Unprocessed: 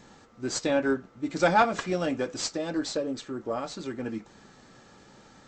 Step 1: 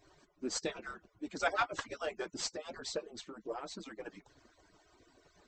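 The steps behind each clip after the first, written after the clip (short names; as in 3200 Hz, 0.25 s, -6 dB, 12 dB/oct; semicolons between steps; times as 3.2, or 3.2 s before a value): median-filter separation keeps percussive; notch 7000 Hz, Q 24; gain -5.5 dB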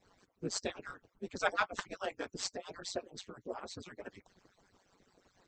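ring modulator 94 Hz; harmonic-percussive split harmonic -12 dB; gain +3 dB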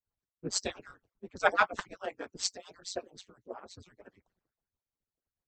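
three-band expander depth 100%; gain -1.5 dB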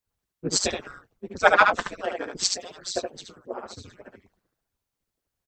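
echo 73 ms -4.5 dB; gain +8 dB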